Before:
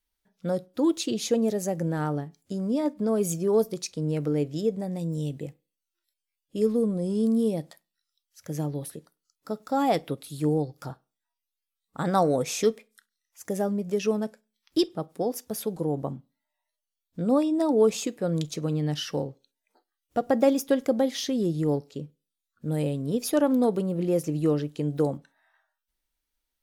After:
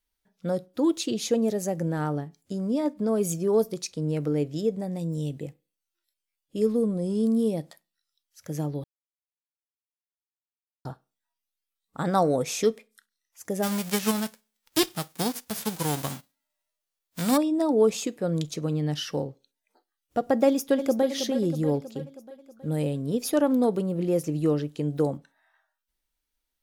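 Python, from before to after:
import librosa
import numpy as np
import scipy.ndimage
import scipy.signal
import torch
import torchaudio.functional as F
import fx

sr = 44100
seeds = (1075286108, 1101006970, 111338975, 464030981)

y = fx.envelope_flatten(x, sr, power=0.3, at=(13.62, 17.36), fade=0.02)
y = fx.echo_throw(y, sr, start_s=20.46, length_s=0.62, ms=320, feedback_pct=60, wet_db=-9.5)
y = fx.edit(y, sr, fx.silence(start_s=8.84, length_s=2.01), tone=tone)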